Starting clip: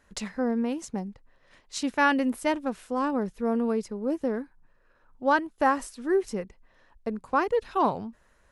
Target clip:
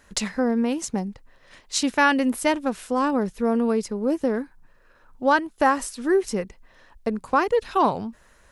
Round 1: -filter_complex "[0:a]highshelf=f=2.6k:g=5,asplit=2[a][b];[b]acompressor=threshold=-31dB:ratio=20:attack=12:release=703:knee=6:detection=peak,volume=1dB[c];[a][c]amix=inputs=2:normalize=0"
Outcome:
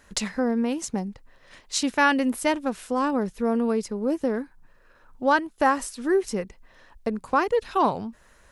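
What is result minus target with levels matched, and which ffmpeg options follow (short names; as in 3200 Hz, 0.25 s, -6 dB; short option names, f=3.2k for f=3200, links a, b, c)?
compressor: peak gain reduction +6 dB
-filter_complex "[0:a]highshelf=f=2.6k:g=5,asplit=2[a][b];[b]acompressor=threshold=-24.5dB:ratio=20:attack=12:release=703:knee=6:detection=peak,volume=1dB[c];[a][c]amix=inputs=2:normalize=0"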